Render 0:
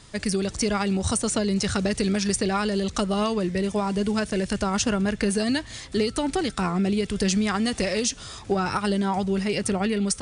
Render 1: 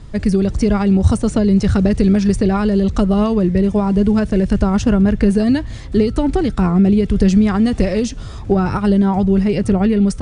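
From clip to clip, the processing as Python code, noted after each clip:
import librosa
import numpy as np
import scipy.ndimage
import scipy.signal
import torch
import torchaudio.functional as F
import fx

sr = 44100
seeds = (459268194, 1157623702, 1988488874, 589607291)

y = fx.tilt_eq(x, sr, slope=-3.5)
y = y * librosa.db_to_amplitude(3.5)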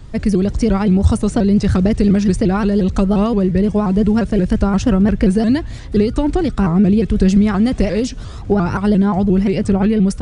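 y = fx.vibrato_shape(x, sr, shape='saw_up', rate_hz=5.7, depth_cents=160.0)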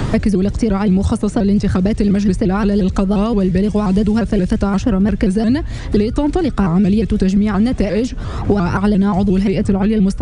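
y = fx.band_squash(x, sr, depth_pct=100)
y = y * librosa.db_to_amplitude(-1.0)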